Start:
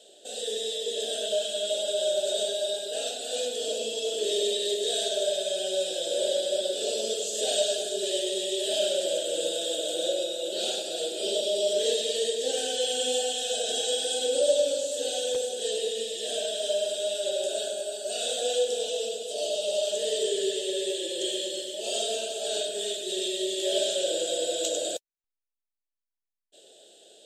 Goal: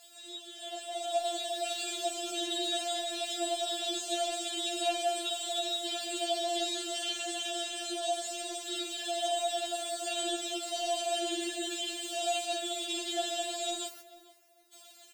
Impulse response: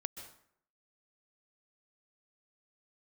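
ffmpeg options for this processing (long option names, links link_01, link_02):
-filter_complex "[0:a]aeval=exprs='val(0)+0.5*0.00944*sgn(val(0))':channel_layout=same,acrossover=split=2800[link_01][link_02];[link_02]acompressor=threshold=-39dB:ratio=4:attack=1:release=60[link_03];[link_01][link_03]amix=inputs=2:normalize=0,atempo=1.8,bandreject=frequency=3300:width=12,dynaudnorm=framelen=160:gausssize=13:maxgain=12dB,highpass=860,afftfilt=real='hypot(re,im)*cos(2*PI*random(0))':imag='hypot(re,im)*sin(2*PI*random(1))':win_size=512:overlap=0.75,asplit=2[link_04][link_05];[link_05]adelay=444,lowpass=frequency=1800:poles=1,volume=-17dB,asplit=2[link_06][link_07];[link_07]adelay=444,lowpass=frequency=1800:poles=1,volume=0.24[link_08];[link_06][link_08]amix=inputs=2:normalize=0[link_09];[link_04][link_09]amix=inputs=2:normalize=0,afftfilt=real='re*4*eq(mod(b,16),0)':imag='im*4*eq(mod(b,16),0)':win_size=2048:overlap=0.75"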